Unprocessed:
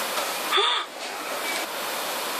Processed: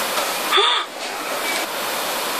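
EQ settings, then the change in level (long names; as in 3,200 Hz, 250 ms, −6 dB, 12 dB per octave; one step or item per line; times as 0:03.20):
low-shelf EQ 75 Hz +10 dB
+5.5 dB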